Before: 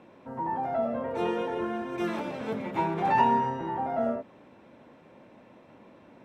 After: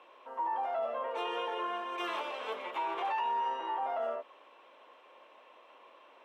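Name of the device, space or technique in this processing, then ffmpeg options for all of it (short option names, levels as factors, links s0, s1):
laptop speaker: -af "highpass=f=440:w=0.5412,highpass=f=440:w=1.3066,equalizer=f=1100:t=o:w=0.32:g=11,equalizer=f=3000:t=o:w=0.54:g=11.5,alimiter=limit=0.075:level=0:latency=1:release=32,volume=0.631"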